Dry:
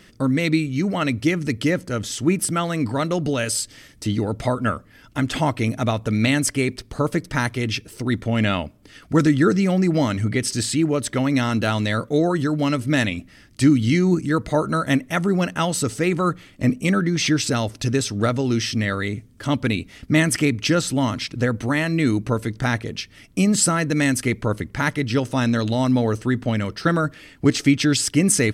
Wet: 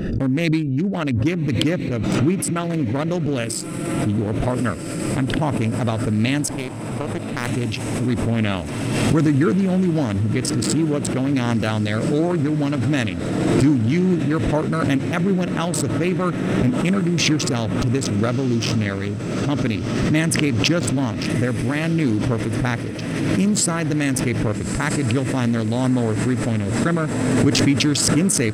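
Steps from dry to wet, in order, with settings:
adaptive Wiener filter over 41 samples
in parallel at −1 dB: brickwall limiter −15.5 dBFS, peak gain reduction 11 dB
0:06.56–0:07.49: on the sum: power curve on the samples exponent 2
on a send: feedback delay with all-pass diffusion 1,272 ms, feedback 74%, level −14 dB
on the sum: background raised ahead of every attack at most 27 dB per second
level −4 dB

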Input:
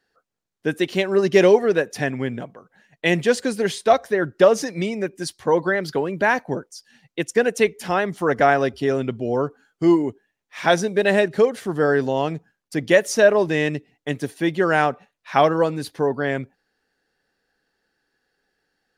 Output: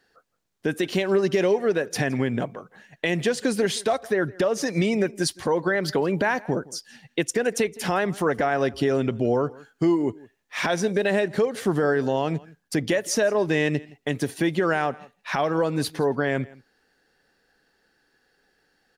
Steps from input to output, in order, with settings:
downward compressor 10 to 1, threshold −23 dBFS, peak gain reduction 14.5 dB
brickwall limiter −18.5 dBFS, peak gain reduction 10 dB
single-tap delay 166 ms −22.5 dB
level +6 dB

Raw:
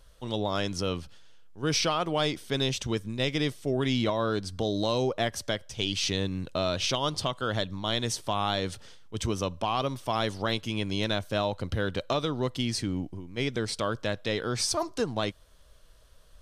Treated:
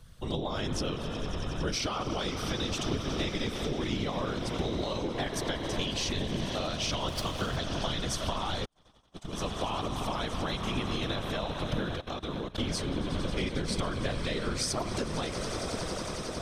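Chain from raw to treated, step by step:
on a send: echo that builds up and dies away 91 ms, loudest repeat 8, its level −17.5 dB
on the sum: spring reverb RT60 3.1 s, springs 35 ms, chirp 35 ms, DRR 9 dB
downward compressor 16 to 1, threshold −29 dBFS, peak gain reduction 8.5 dB
0:08.65–0:09.33: noise gate −30 dBFS, range −50 dB
0:11.96–0:12.58: output level in coarse steps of 18 dB
parametric band 550 Hz −2.5 dB 0.85 octaves
random phases in short frames
low-shelf EQ 66 Hz +6 dB
0:07.08–0:07.57: windowed peak hold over 3 samples
level +1.5 dB

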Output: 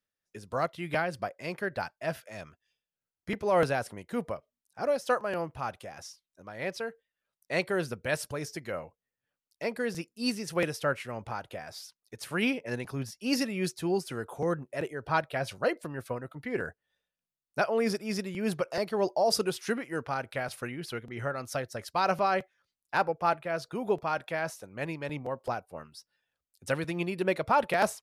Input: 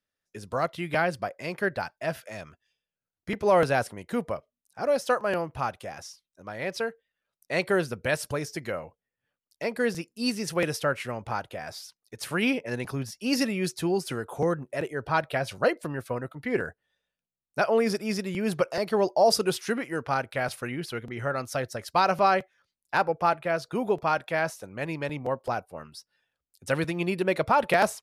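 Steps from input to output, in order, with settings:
amplitude tremolo 3.3 Hz, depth 38%
level −2 dB

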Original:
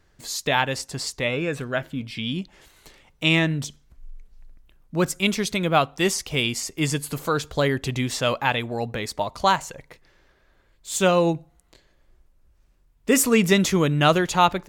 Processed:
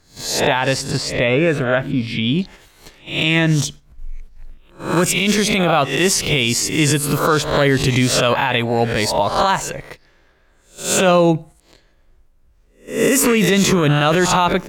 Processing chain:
peak hold with a rise ahead of every peak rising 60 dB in 0.46 s
noise gate −44 dBFS, range −7 dB
high-shelf EQ 4,600 Hz −7 dB, from 0:00.97 −12 dB, from 0:02.39 −2.5 dB
boost into a limiter +14.5 dB
level −4.5 dB

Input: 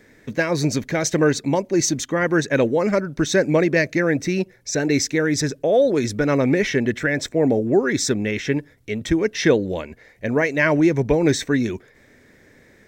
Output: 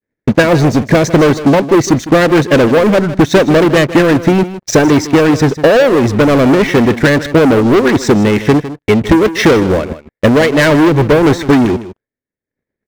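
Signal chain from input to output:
downward expander −40 dBFS
low-pass filter 1,400 Hz 6 dB per octave
leveller curve on the samples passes 5
transient designer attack +5 dB, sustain −9 dB
on a send: single-tap delay 156 ms −14 dB

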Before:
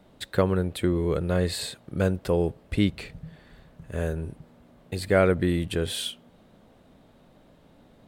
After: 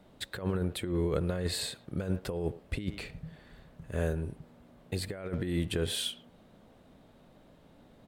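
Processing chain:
far-end echo of a speakerphone 110 ms, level −20 dB
compressor whose output falls as the input rises −25 dBFS, ratio −0.5
level −5 dB

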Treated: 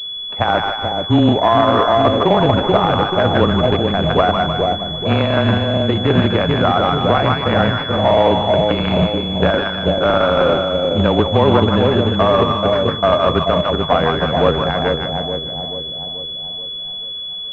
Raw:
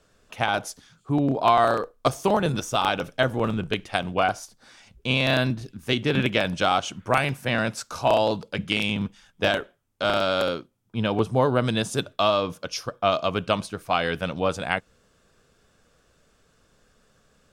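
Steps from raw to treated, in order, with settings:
on a send: echo with a time of its own for lows and highs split 790 Hz, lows 433 ms, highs 152 ms, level −3.5 dB
on the sum: frequency shifter −20 Hz
floating-point word with a short mantissa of 2 bits
boost into a limiter +11.5 dB
switching amplifier with a slow clock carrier 3,400 Hz
level −1.5 dB

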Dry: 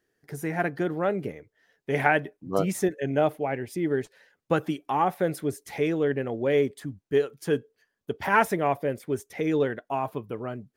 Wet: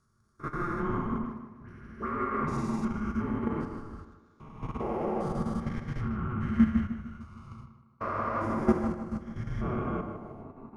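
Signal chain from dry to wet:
spectrum averaged block by block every 400 ms
loudspeaker in its box 440–9,400 Hz, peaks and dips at 570 Hz +8 dB, 1,500 Hz +9 dB, 2,200 Hz −8 dB, 3,200 Hz −7 dB, 8,800 Hz −9 dB
rectangular room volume 340 cubic metres, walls furnished, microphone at 1.9 metres
dynamic equaliser 2,300 Hz, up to +5 dB, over −40 dBFS, Q 0.87
output level in coarse steps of 10 dB
frequency shifter −350 Hz
0:01.18–0:02.85: all-pass dispersion highs, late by 82 ms, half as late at 1,700 Hz
on a send: tape delay 153 ms, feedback 63%, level −4 dB, low-pass 2,100 Hz
on the sum: expander for the loud parts 1.5 to 1, over −47 dBFS
level +3 dB

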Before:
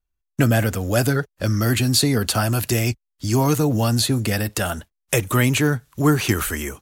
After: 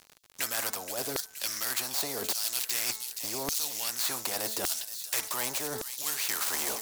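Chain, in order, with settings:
gap after every zero crossing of 0.052 ms
flat-topped bell 2,000 Hz −11.5 dB
hum removal 218.5 Hz, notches 10
auto-filter high-pass saw down 0.86 Hz 340–5,400 Hz
reversed playback
downward compressor 6 to 1, threshold −34 dBFS, peak gain reduction 21.5 dB
reversed playback
surface crackle 90 per second −55 dBFS
on a send: delay with a high-pass on its return 473 ms, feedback 48%, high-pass 4,000 Hz, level −11.5 dB
on the sum: every bin compressed towards the loudest bin 2 to 1
level +8.5 dB

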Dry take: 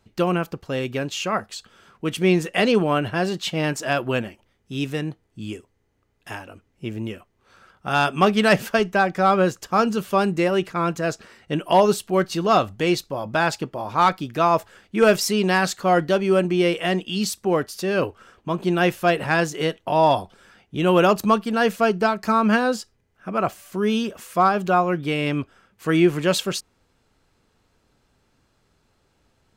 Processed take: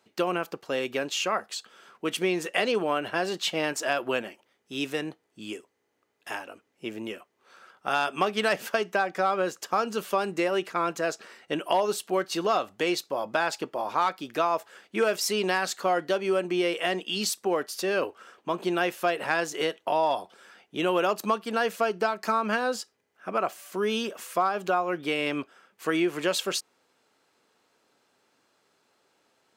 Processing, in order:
high-pass filter 350 Hz 12 dB per octave
downward compressor 3 to 1, threshold −23 dBFS, peak gain reduction 9.5 dB

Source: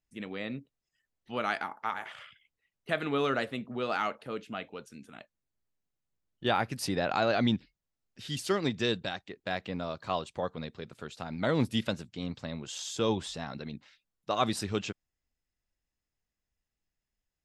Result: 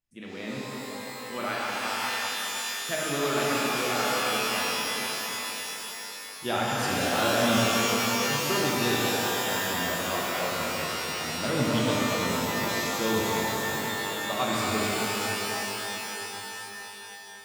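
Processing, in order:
reverb with rising layers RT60 4 s, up +12 semitones, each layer −2 dB, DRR −5.5 dB
level −3.5 dB

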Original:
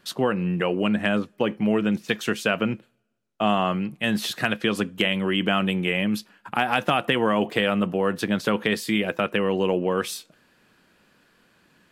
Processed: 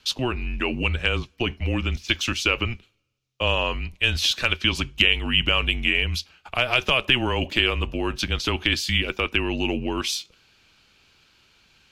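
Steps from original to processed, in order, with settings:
flat-topped bell 4,100 Hz +11.5 dB
frequency shifter −130 Hz
level −3 dB

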